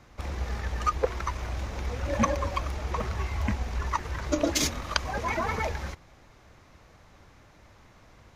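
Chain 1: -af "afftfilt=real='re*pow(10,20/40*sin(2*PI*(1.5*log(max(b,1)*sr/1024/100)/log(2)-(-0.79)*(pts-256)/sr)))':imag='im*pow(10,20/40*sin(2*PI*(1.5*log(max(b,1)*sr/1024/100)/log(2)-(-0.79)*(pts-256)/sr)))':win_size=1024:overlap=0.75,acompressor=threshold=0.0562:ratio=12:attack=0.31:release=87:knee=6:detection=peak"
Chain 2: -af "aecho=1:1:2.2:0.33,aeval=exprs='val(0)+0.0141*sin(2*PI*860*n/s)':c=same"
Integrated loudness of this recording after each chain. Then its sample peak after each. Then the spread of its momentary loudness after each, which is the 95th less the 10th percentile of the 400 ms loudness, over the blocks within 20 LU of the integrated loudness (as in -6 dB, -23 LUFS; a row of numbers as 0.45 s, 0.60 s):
-33.5 LUFS, -30.5 LUFS; -19.5 dBFS, -4.0 dBFS; 20 LU, 13 LU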